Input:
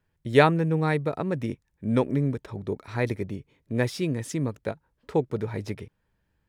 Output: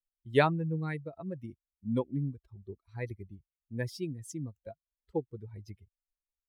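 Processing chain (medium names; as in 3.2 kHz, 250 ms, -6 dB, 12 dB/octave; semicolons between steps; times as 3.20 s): expander on every frequency bin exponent 2; trim -5 dB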